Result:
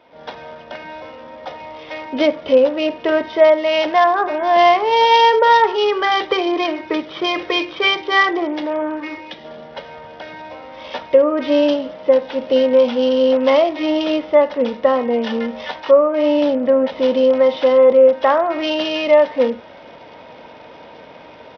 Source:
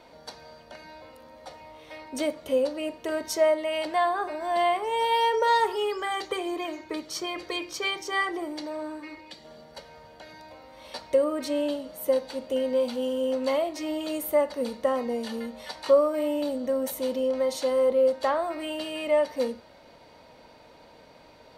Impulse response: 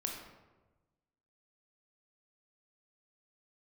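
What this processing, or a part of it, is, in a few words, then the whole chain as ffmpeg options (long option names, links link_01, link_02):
Bluetooth headset: -af "highpass=frequency=160:poles=1,dynaudnorm=framelen=110:gausssize=3:maxgain=13.5dB,aresample=8000,aresample=44100" -ar 44100 -c:a sbc -b:a 64k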